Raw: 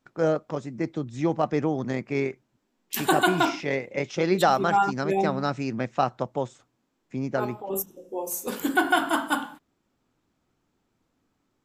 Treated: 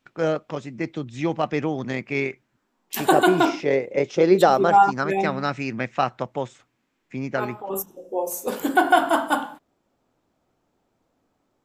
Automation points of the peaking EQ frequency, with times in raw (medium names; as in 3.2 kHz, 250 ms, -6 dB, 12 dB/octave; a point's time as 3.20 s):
peaking EQ +9 dB 1.2 oct
2.28 s 2.7 kHz
3.22 s 440 Hz
4.63 s 440 Hz
5.22 s 2.2 kHz
7.40 s 2.2 kHz
8.09 s 630 Hz